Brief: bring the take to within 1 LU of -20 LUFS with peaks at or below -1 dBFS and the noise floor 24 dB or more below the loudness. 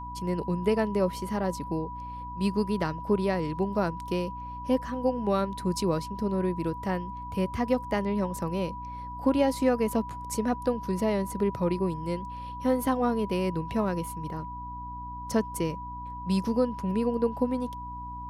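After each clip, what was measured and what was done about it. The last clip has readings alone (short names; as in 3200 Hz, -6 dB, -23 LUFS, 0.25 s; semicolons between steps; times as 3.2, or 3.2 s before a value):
hum 60 Hz; harmonics up to 300 Hz; hum level -40 dBFS; steady tone 980 Hz; tone level -37 dBFS; loudness -29.5 LUFS; peak -12.5 dBFS; loudness target -20.0 LUFS
-> de-hum 60 Hz, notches 5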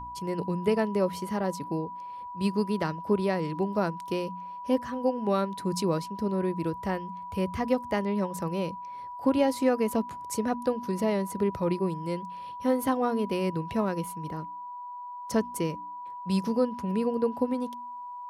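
hum none; steady tone 980 Hz; tone level -37 dBFS
-> notch 980 Hz, Q 30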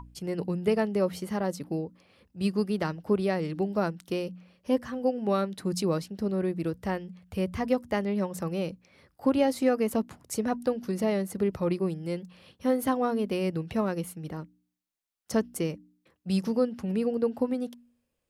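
steady tone none; loudness -29.5 LUFS; peak -12.5 dBFS; loudness target -20.0 LUFS
-> gain +9.5 dB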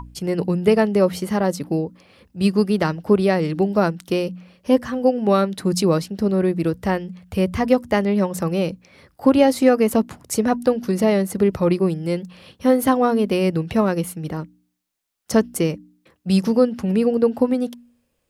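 loudness -20.0 LUFS; peak -3.0 dBFS; noise floor -69 dBFS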